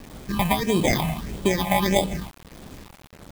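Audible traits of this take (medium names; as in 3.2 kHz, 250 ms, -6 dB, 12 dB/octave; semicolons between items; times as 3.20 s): aliases and images of a low sample rate 1.4 kHz, jitter 0%; phasing stages 6, 1.6 Hz, lowest notch 370–1700 Hz; tremolo triangle 1.2 Hz, depth 50%; a quantiser's noise floor 8-bit, dither none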